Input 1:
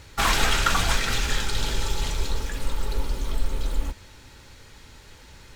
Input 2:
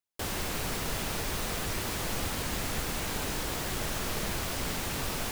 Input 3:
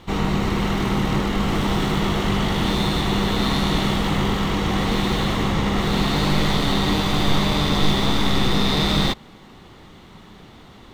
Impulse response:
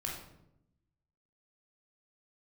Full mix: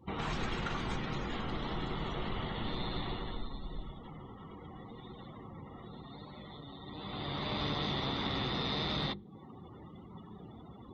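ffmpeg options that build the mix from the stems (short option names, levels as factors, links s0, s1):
-filter_complex "[0:a]equalizer=f=110:w=4.5:g=-5,volume=0.119,asplit=2[s0][s1];[s1]volume=0.141[s2];[2:a]highpass=66,bandreject=f=50:t=h:w=6,bandreject=f=100:t=h:w=6,bandreject=f=150:t=h:w=6,bandreject=f=200:t=h:w=6,bandreject=f=250:t=h:w=6,bandreject=f=300:t=h:w=6,bandreject=f=350:t=h:w=6,bandreject=f=400:t=h:w=6,bandreject=f=450:t=h:w=6,bandreject=f=500:t=h:w=6,acompressor=threshold=0.0224:ratio=3,volume=2,afade=t=out:st=3.04:d=0.44:silence=0.375837,afade=t=in:st=6.85:d=0.78:silence=0.266073,asplit=2[s3][s4];[s4]volume=0.0668[s5];[3:a]atrim=start_sample=2205[s6];[s2][s5]amix=inputs=2:normalize=0[s7];[s7][s6]afir=irnorm=-1:irlink=0[s8];[s0][s3][s8]amix=inputs=3:normalize=0,afftdn=nr=31:nf=-46"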